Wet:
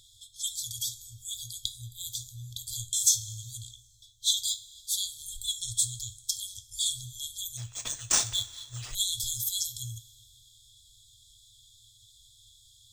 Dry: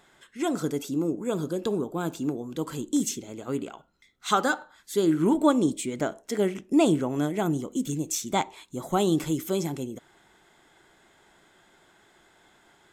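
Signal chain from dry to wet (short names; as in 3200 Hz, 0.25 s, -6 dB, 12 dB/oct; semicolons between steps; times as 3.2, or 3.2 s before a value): two-slope reverb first 0.29 s, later 2 s, from -17 dB, DRR 8 dB; FFT band-reject 120–3200 Hz; 7.57–8.95 decimation joined by straight lines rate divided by 3×; gain +9 dB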